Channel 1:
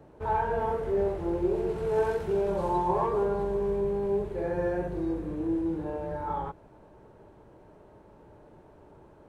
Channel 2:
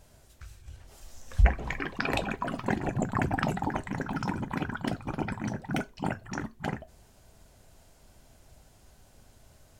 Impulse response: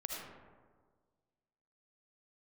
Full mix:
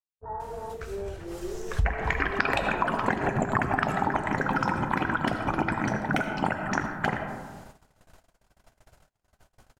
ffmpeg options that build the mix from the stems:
-filter_complex "[0:a]lowpass=1400,afwtdn=0.0316,tiltshelf=frequency=850:gain=6,volume=-14.5dB[link_01];[1:a]adelay=400,volume=1dB,asplit=2[link_02][link_03];[link_03]volume=-3dB[link_04];[2:a]atrim=start_sample=2205[link_05];[link_04][link_05]afir=irnorm=-1:irlink=0[link_06];[link_01][link_02][link_06]amix=inputs=3:normalize=0,agate=range=-38dB:threshold=-47dB:ratio=16:detection=peak,equalizer=frequency=1300:width=0.59:gain=9,acompressor=threshold=-22dB:ratio=5"

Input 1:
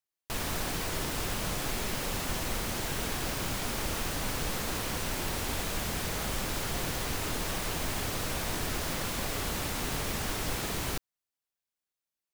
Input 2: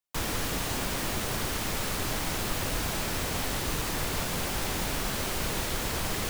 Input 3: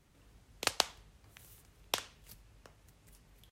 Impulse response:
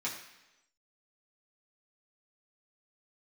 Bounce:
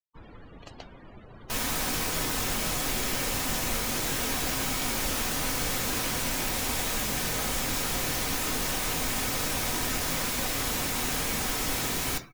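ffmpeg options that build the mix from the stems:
-filter_complex "[0:a]adelay=1200,volume=-1.5dB,asplit=2[link_01][link_02];[link_02]volume=-3dB[link_03];[1:a]lowpass=5800,volume=-14dB[link_04];[2:a]aeval=exprs='(tanh(20*val(0)+0.45)-tanh(0.45))/20':channel_layout=same,dynaudnorm=framelen=140:gausssize=9:maxgain=10dB,volume=-14.5dB[link_05];[3:a]atrim=start_sample=2205[link_06];[link_03][link_06]afir=irnorm=-1:irlink=0[link_07];[link_01][link_04][link_05][link_07]amix=inputs=4:normalize=0,afftdn=noise_reduction=35:noise_floor=-46,highshelf=frequency=6300:gain=8"

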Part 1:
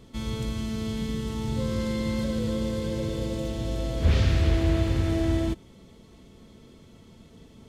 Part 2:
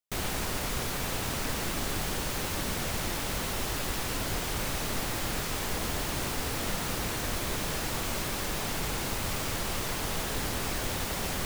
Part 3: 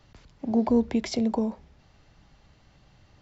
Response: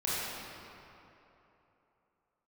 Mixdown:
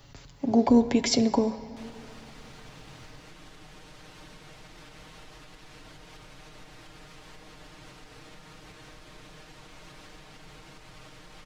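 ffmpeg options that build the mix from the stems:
-filter_complex "[1:a]lowpass=3900,aecho=1:1:6.5:0.75,alimiter=level_in=4.5dB:limit=-24dB:level=0:latency=1:release=454,volume=-4.5dB,adelay=1650,volume=-11dB[link_01];[2:a]aecho=1:1:7.2:0.49,volume=2.5dB,asplit=2[link_02][link_03];[link_03]volume=-20.5dB[link_04];[3:a]atrim=start_sample=2205[link_05];[link_04][link_05]afir=irnorm=-1:irlink=0[link_06];[link_01][link_02][link_06]amix=inputs=3:normalize=0,crystalizer=i=1.5:c=0"

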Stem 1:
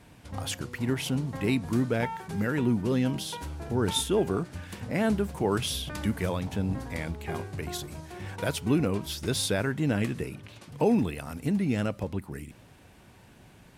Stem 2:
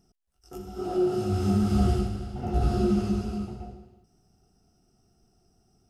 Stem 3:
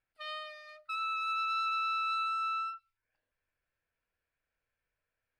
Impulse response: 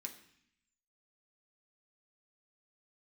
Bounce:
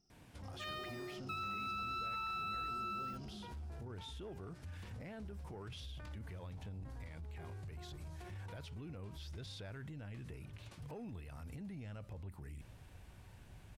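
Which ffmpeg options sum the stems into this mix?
-filter_complex "[0:a]acrossover=split=5300[link_01][link_02];[link_02]acompressor=threshold=-54dB:ratio=4:attack=1:release=60[link_03];[link_01][link_03]amix=inputs=2:normalize=0,asubboost=boost=4.5:cutoff=100,alimiter=limit=-23dB:level=0:latency=1:release=395,adelay=100,volume=-7dB[link_04];[1:a]lowpass=frequency=5300:width_type=q:width=3.2,volume=-13dB[link_05];[2:a]acrusher=bits=8:mix=0:aa=0.5,adelay=400,volume=-3dB[link_06];[link_04][link_05]amix=inputs=2:normalize=0,asoftclip=type=tanh:threshold=-32dB,alimiter=level_in=18dB:limit=-24dB:level=0:latency=1:release=42,volume=-18dB,volume=0dB[link_07];[link_06][link_07]amix=inputs=2:normalize=0,acompressor=threshold=-39dB:ratio=6"

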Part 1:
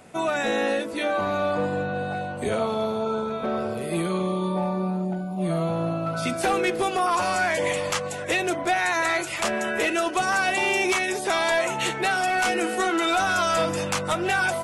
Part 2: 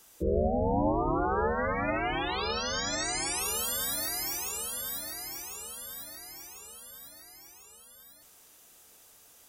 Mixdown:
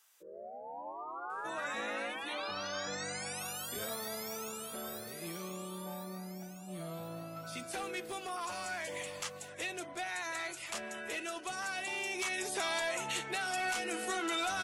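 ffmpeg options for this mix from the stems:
ffmpeg -i stem1.wav -i stem2.wav -filter_complex "[0:a]highshelf=frequency=2200:gain=8.5,adelay=1300,volume=-11dB,afade=type=in:start_time=12.15:duration=0.38:silence=0.421697[link_01];[1:a]highpass=1500,highshelf=frequency=2100:gain=-11.5,volume=0dB[link_02];[link_01][link_02]amix=inputs=2:normalize=0,alimiter=level_in=2dB:limit=-24dB:level=0:latency=1:release=495,volume=-2dB" out.wav

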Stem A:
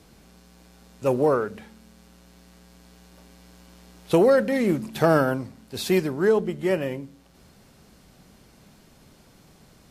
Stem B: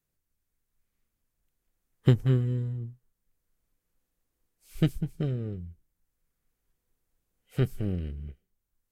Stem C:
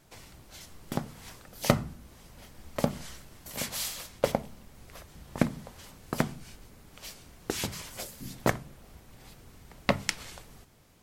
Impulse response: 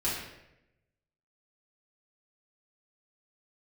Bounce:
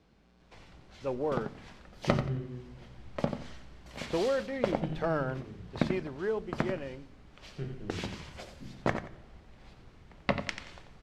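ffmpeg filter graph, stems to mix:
-filter_complex "[0:a]asubboost=boost=8.5:cutoff=59,acrusher=bits=7:mode=log:mix=0:aa=0.000001,volume=-11dB[link_01];[1:a]bandreject=frequency=60:width_type=h:width=6,bandreject=frequency=120:width_type=h:width=6,volume=-17dB,asplit=3[link_02][link_03][link_04];[link_03]volume=-6dB[link_05];[link_04]volume=-4.5dB[link_06];[2:a]adelay=400,volume=-4dB,asplit=3[link_07][link_08][link_09];[link_08]volume=-21.5dB[link_10];[link_09]volume=-8.5dB[link_11];[3:a]atrim=start_sample=2205[link_12];[link_05][link_10]amix=inputs=2:normalize=0[link_13];[link_13][link_12]afir=irnorm=-1:irlink=0[link_14];[link_06][link_11]amix=inputs=2:normalize=0,aecho=0:1:89|178|267|356:1|0.23|0.0529|0.0122[link_15];[link_01][link_02][link_07][link_14][link_15]amix=inputs=5:normalize=0,lowpass=3700"

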